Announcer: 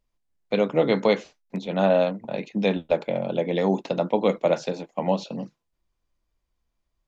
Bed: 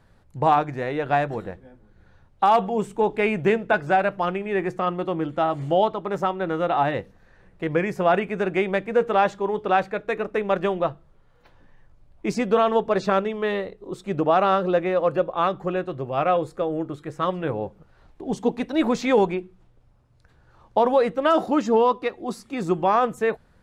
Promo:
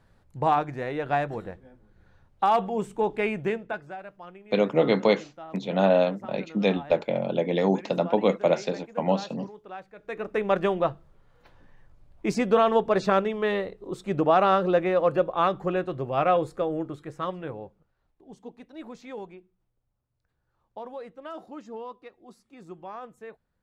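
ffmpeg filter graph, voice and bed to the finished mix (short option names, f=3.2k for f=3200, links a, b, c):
-filter_complex "[0:a]adelay=4000,volume=-0.5dB[a];[1:a]volume=15dB,afade=t=out:st=3.18:d=0.77:silence=0.158489,afade=t=in:st=9.96:d=0.49:silence=0.112202,afade=t=out:st=16.45:d=1.51:silence=0.112202[b];[a][b]amix=inputs=2:normalize=0"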